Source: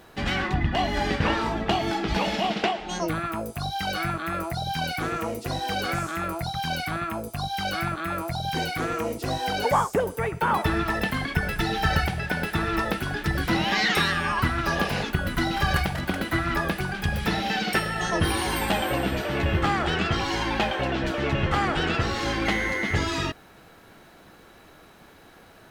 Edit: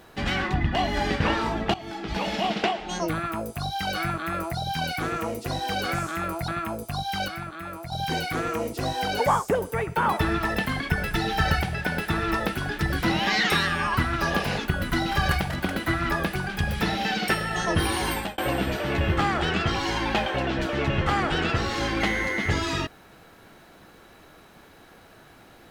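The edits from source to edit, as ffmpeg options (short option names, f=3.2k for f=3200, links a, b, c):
-filter_complex "[0:a]asplit=6[a][b][c][d][e][f];[a]atrim=end=1.74,asetpts=PTS-STARTPTS,afade=t=out:st=1.736:d=0.004:c=hsin:silence=0.158489[g];[b]atrim=start=1.74:end=6.482,asetpts=PTS-STARTPTS,afade=t=in:d=0.73:silence=0.158489[h];[c]atrim=start=6.928:end=7.732[i];[d]atrim=start=7.728:end=8.372,asetpts=PTS-STARTPTS,volume=-7dB[j];[e]atrim=start=8.368:end=18.83,asetpts=PTS-STARTPTS,afade=t=out:st=10.192:d=0.27[k];[f]atrim=start=18.83,asetpts=PTS-STARTPTS,afade=t=in:d=0.004:c=hsin[l];[g][h]concat=n=2:v=0:a=1[m];[m][i]acrossfade=d=0.004:c1=hsin:c2=hsin[n];[n][j]acrossfade=d=0.004:c1=hsin:c2=hsin[o];[k][l]concat=n=2:v=0:a=1[p];[o][p]acrossfade=d=0.004:c1=hsin:c2=hsin"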